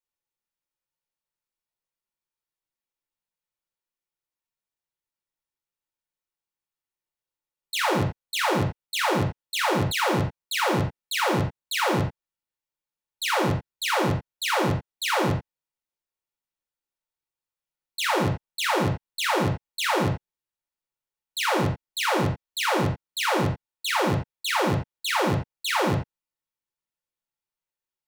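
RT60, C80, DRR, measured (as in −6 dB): non-exponential decay, 13.0 dB, −0.5 dB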